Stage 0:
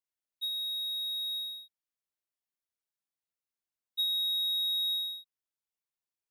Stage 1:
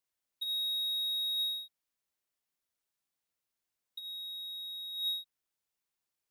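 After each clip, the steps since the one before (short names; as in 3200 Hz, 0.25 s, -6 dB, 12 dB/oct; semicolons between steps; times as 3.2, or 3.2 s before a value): negative-ratio compressor -36 dBFS, ratio -0.5; gain +1 dB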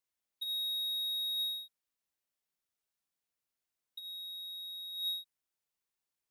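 dynamic EQ 9500 Hz, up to +4 dB, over -56 dBFS, Q 1; gain -2.5 dB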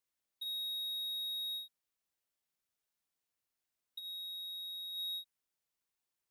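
limiter -34.5 dBFS, peak gain reduction 6 dB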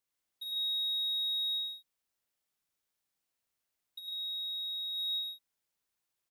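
loudspeakers at several distances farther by 36 m -2 dB, 50 m -5 dB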